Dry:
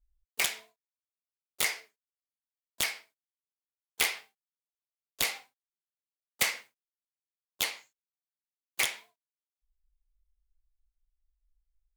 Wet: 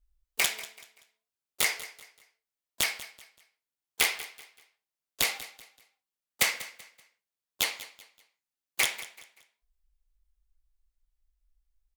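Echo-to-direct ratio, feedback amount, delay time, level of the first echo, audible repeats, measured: −15.5 dB, 33%, 191 ms, −16.0 dB, 2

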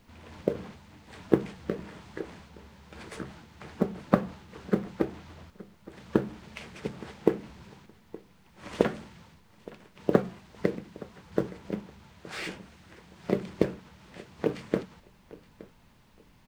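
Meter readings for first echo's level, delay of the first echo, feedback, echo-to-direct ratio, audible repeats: −20.5 dB, 869 ms, 22%, −20.5 dB, 2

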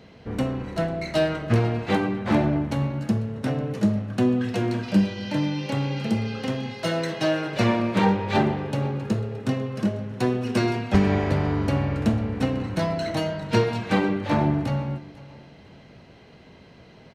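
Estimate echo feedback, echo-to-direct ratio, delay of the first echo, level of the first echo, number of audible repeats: 27%, −19.5 dB, 497 ms, −20.0 dB, 2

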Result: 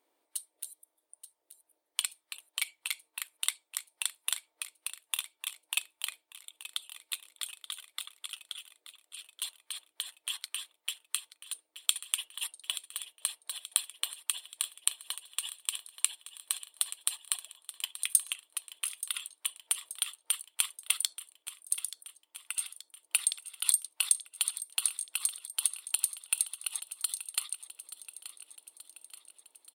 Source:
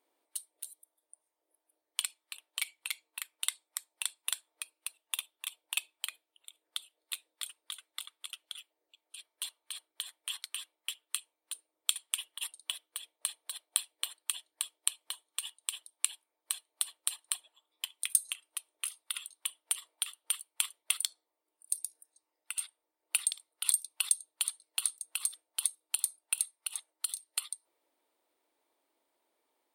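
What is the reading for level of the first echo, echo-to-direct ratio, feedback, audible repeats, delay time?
−14.0 dB, −12.0 dB, 58%, 5, 879 ms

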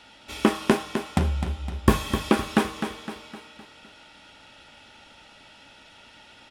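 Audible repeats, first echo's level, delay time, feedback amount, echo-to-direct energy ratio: 5, −8.5 dB, 256 ms, 47%, −7.5 dB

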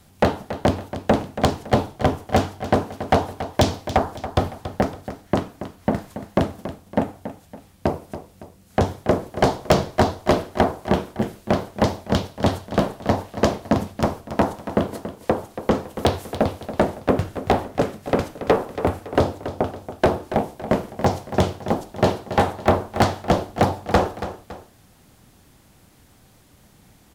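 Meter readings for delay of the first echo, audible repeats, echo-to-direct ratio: 280 ms, 2, −11.5 dB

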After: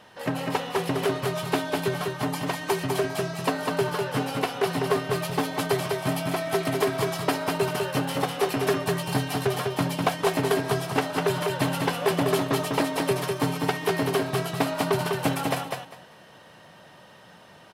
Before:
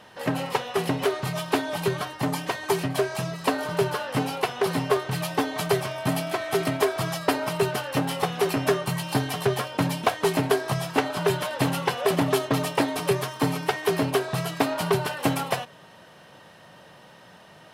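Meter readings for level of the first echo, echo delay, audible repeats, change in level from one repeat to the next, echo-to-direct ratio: −4.0 dB, 200 ms, 3, −14.5 dB, −4.0 dB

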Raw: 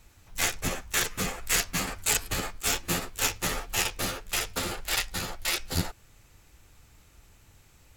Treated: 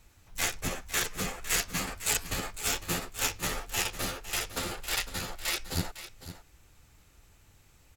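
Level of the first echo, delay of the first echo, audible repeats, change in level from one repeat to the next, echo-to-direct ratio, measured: −13.0 dB, 505 ms, 1, repeats not evenly spaced, −13.0 dB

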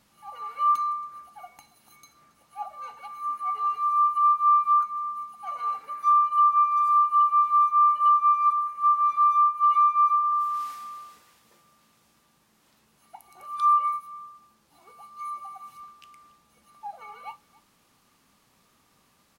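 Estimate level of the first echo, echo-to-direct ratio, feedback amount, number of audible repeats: −22.5 dB, −22.5 dB, repeats not evenly spaced, 1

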